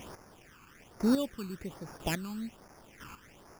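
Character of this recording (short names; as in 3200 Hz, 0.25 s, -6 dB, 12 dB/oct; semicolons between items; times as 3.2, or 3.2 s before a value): a quantiser's noise floor 8-bit, dither triangular; chopped level 1 Hz, depth 65%, duty 15%; aliases and images of a low sample rate 4100 Hz, jitter 0%; phasing stages 12, 1.2 Hz, lowest notch 600–3100 Hz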